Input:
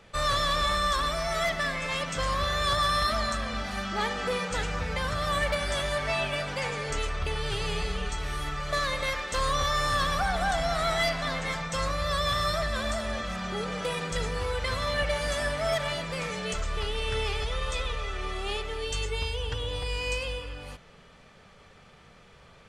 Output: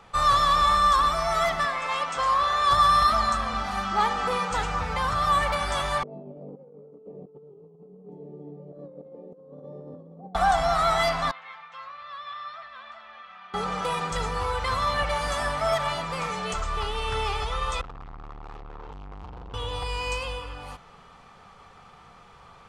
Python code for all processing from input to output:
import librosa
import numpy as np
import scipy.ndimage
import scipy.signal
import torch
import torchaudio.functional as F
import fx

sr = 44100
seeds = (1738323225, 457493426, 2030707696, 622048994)

y = fx.chain(x, sr, fx.lowpass(hz=11000.0, slope=12),
    fx.bass_treble(bass_db=-13, treble_db=-3), at=(1.65, 2.71))
y = fx.chain(y, sr, fx.ellip_bandpass(low_hz=170.0, high_hz=500.0, order=3, stop_db=50),
    fx.over_compress(threshold_db=-43.0, ratio=-0.5), at=(6.03, 10.35))
y = fx.chain(y, sr, fx.lowpass(hz=2800.0, slope=24),
    fx.differentiator(), at=(11.31, 13.54))
y = fx.chain(y, sr, fx.lowpass(hz=1400.0, slope=12),
    fx.low_shelf(hz=200.0, db=11.0),
    fx.tube_stage(drive_db=40.0, bias=0.55), at=(17.81, 19.54))
y = fx.band_shelf(y, sr, hz=970.0, db=9.0, octaves=1.1)
y = fx.notch(y, sr, hz=620.0, q=12.0)